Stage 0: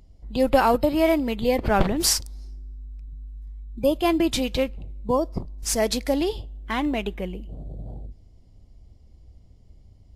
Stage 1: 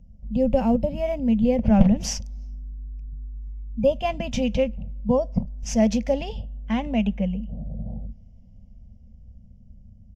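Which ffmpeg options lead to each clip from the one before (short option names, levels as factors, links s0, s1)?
-filter_complex "[0:a]firequalizer=gain_entry='entry(130,0);entry(220,10);entry(330,-26);entry(510,-4);entry(1200,-24);entry(2800,-13);entry(4000,-27);entry(6000,-10);entry(8700,-27)':delay=0.05:min_phase=1,acrossover=split=680|5500[s0][s1][s2];[s1]dynaudnorm=f=220:g=17:m=3.16[s3];[s0][s3][s2]amix=inputs=3:normalize=0,volume=1.41"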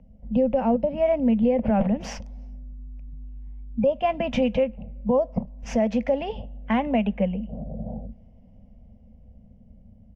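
-filter_complex "[0:a]acrossover=split=250 2700:gain=0.224 1 0.0794[s0][s1][s2];[s0][s1][s2]amix=inputs=3:normalize=0,alimiter=limit=0.0794:level=0:latency=1:release=339,volume=2.82"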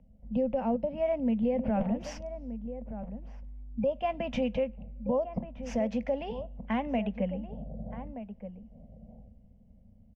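-filter_complex "[0:a]asplit=2[s0][s1];[s1]adelay=1224,volume=0.282,highshelf=f=4000:g=-27.6[s2];[s0][s2]amix=inputs=2:normalize=0,volume=0.422"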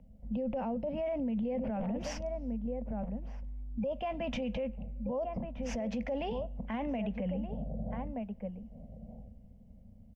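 -af "alimiter=level_in=2.11:limit=0.0631:level=0:latency=1:release=12,volume=0.473,volume=1.33"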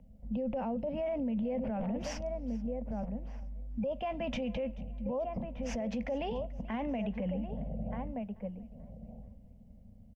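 -af "aecho=1:1:435|870|1305:0.075|0.0322|0.0139"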